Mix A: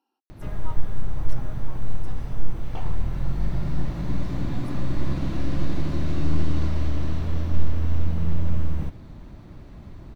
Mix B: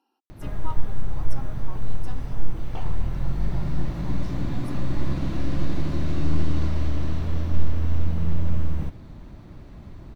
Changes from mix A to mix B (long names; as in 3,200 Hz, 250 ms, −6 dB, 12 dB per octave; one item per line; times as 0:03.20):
speech +5.0 dB
second sound: muted